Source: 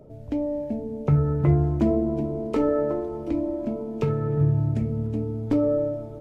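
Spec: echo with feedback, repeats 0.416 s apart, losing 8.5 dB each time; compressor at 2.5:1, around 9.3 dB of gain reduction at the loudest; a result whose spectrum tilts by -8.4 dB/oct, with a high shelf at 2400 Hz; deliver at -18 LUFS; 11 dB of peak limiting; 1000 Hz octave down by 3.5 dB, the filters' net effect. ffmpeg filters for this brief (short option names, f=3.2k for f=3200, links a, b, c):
-af "equalizer=f=1k:t=o:g=-4,highshelf=f=2.4k:g=-6.5,acompressor=threshold=-29dB:ratio=2.5,alimiter=level_in=5dB:limit=-24dB:level=0:latency=1,volume=-5dB,aecho=1:1:416|832|1248|1664:0.376|0.143|0.0543|0.0206,volume=17.5dB"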